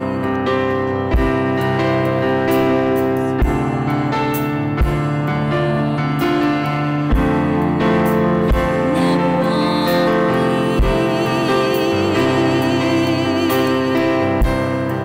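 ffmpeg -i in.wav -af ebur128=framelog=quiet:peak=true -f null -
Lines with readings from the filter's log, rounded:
Integrated loudness:
  I:         -16.8 LUFS
  Threshold: -26.8 LUFS
Loudness range:
  LRA:         2.1 LU
  Threshold: -36.7 LUFS
  LRA low:   -18.1 LUFS
  LRA high:  -15.9 LUFS
True peak:
  Peak:       -8.3 dBFS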